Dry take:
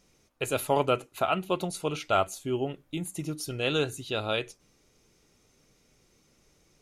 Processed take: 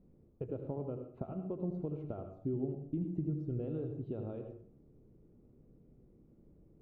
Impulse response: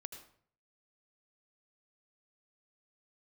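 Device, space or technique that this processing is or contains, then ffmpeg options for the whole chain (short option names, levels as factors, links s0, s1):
television next door: -filter_complex "[0:a]lowshelf=f=140:g=-5,acompressor=threshold=0.0112:ratio=4,lowpass=280[s0];[1:a]atrim=start_sample=2205[s1];[s0][s1]afir=irnorm=-1:irlink=0,volume=4.73"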